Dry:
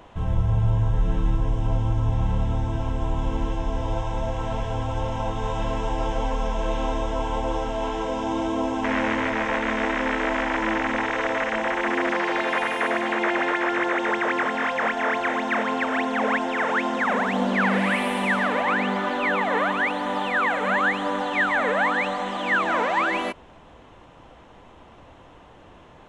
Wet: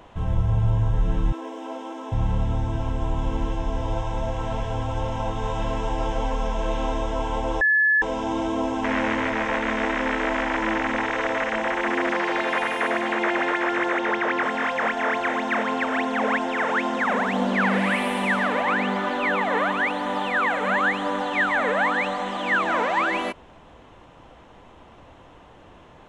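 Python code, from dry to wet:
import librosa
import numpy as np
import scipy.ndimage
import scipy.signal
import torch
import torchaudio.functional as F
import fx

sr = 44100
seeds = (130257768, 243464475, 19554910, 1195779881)

y = fx.brickwall_highpass(x, sr, low_hz=240.0, at=(1.32, 2.12))
y = fx.lowpass(y, sr, hz=6100.0, slope=12, at=(13.99, 14.43))
y = fx.edit(y, sr, fx.bleep(start_s=7.61, length_s=0.41, hz=1720.0, db=-15.5), tone=tone)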